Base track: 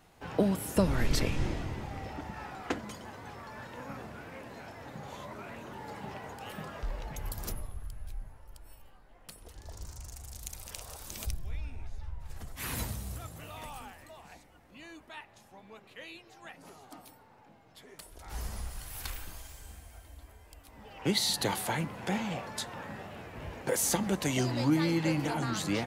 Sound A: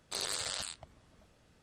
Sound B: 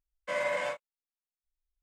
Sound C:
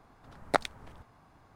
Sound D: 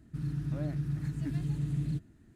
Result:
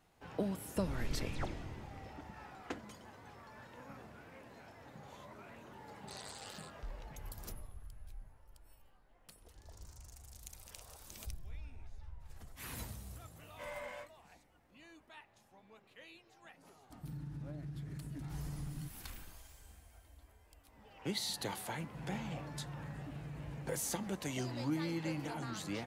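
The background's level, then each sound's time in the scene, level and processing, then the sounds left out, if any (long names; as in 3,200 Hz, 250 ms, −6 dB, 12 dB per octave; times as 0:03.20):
base track −9.5 dB
0:00.79: mix in C −16.5 dB + all-pass dispersion lows, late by 107 ms, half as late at 2,300 Hz
0:05.96: mix in A −14.5 dB
0:13.31: mix in B −15 dB
0:16.90: mix in D −0.5 dB + downward compressor 5 to 1, threshold −42 dBFS
0:21.81: mix in D −7 dB + downward compressor, threshold −36 dBFS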